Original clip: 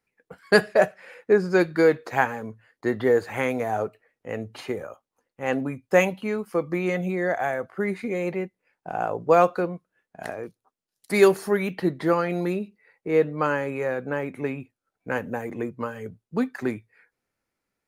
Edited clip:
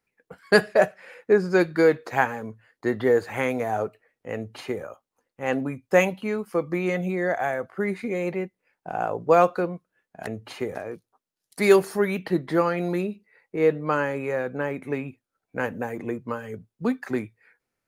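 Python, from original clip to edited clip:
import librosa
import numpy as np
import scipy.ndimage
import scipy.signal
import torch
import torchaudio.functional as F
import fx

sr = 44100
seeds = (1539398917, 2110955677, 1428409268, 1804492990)

y = fx.edit(x, sr, fx.duplicate(start_s=4.35, length_s=0.48, to_s=10.27), tone=tone)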